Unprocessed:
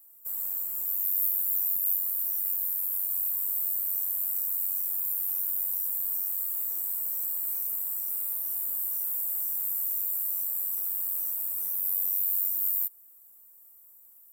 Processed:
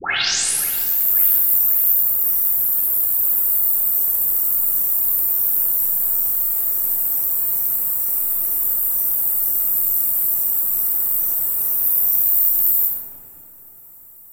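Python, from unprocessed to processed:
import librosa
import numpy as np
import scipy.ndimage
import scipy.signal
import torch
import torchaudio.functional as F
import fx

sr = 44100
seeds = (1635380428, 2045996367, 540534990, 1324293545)

p1 = fx.tape_start_head(x, sr, length_s=0.77)
p2 = p1 + fx.echo_filtered(p1, sr, ms=539, feedback_pct=51, hz=3700.0, wet_db=-15.0, dry=0)
p3 = fx.room_shoebox(p2, sr, seeds[0], volume_m3=2900.0, walls='mixed', distance_m=4.1)
y = p3 * 10.0 ** (7.5 / 20.0)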